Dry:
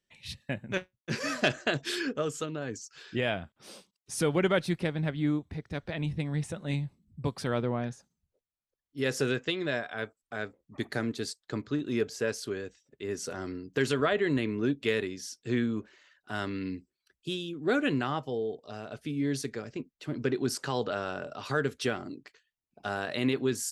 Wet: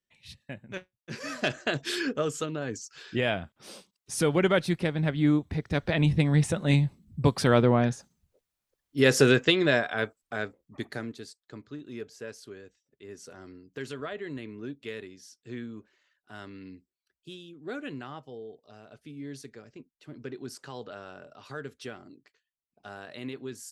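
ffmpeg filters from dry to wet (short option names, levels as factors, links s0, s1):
-af "volume=2.82,afade=t=in:st=1.11:d=0.96:silence=0.354813,afade=t=in:st=4.92:d=1.05:silence=0.473151,afade=t=out:st=9.5:d=1.33:silence=0.281838,afade=t=out:st=10.83:d=0.45:silence=0.398107"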